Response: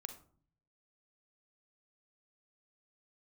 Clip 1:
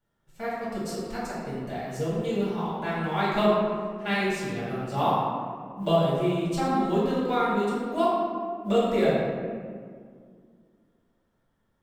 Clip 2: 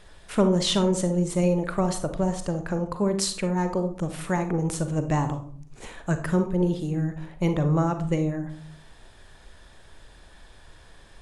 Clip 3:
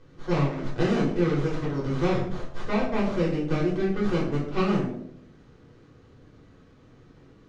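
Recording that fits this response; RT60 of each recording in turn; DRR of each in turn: 2; 2.0, 0.50, 0.70 s; -10.5, 7.5, -7.0 dB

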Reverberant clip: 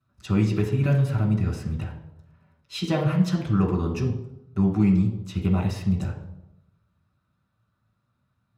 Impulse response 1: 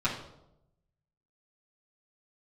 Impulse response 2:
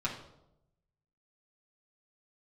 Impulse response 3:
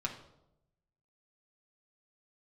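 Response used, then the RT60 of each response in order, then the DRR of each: 1; 0.85, 0.85, 0.85 s; -11.5, -7.0, -2.0 dB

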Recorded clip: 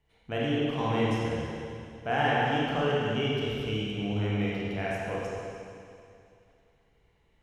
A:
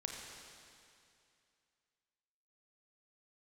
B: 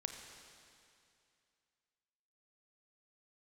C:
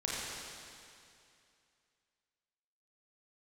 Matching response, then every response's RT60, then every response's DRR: C; 2.5, 2.5, 2.5 s; 0.0, 4.0, -6.5 dB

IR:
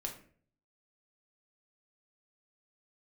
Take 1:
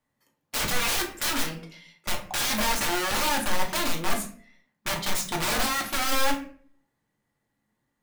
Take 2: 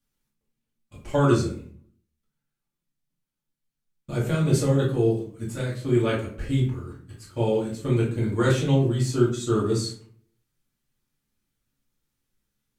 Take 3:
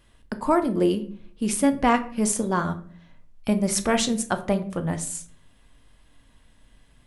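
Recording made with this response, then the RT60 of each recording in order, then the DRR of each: 1; 0.50, 0.50, 0.50 s; 1.0, -6.0, 7.5 dB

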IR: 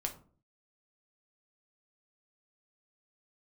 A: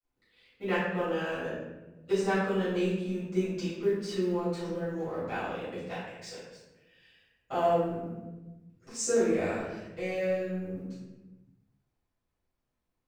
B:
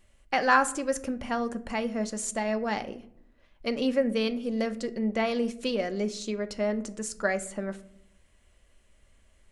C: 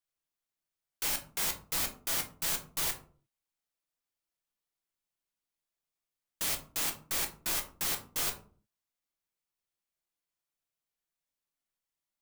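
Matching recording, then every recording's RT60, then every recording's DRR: C; 1.1, 0.70, 0.45 s; -14.0, 8.0, 2.5 dB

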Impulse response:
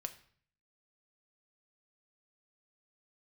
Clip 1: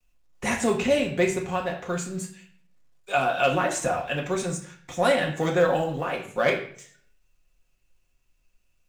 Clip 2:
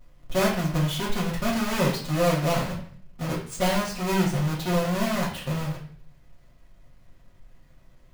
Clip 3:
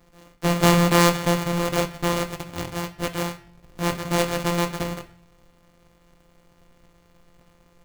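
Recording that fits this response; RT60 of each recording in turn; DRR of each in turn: 3; 0.50, 0.50, 0.50 s; -1.0, -7.5, 7.0 dB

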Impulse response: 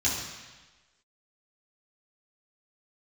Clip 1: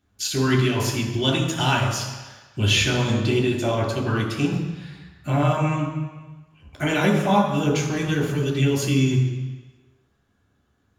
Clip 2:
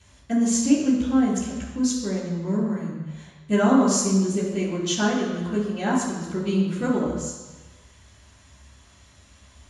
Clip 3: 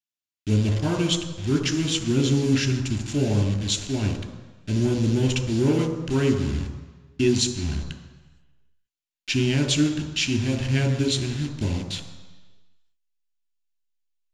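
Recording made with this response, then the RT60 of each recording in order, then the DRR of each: 2; 1.2, 1.2, 1.2 s; -2.0, -9.0, 5.5 dB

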